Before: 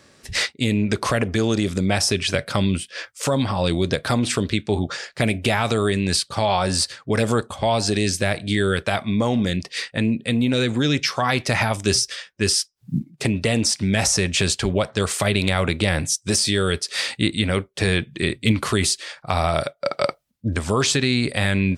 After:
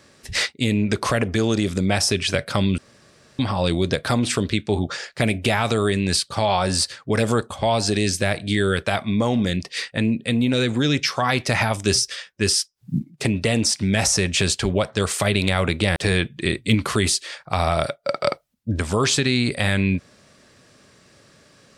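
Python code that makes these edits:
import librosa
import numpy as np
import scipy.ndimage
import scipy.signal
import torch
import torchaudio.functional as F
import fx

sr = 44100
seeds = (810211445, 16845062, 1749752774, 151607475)

y = fx.edit(x, sr, fx.room_tone_fill(start_s=2.78, length_s=0.61),
    fx.cut(start_s=15.96, length_s=1.77), tone=tone)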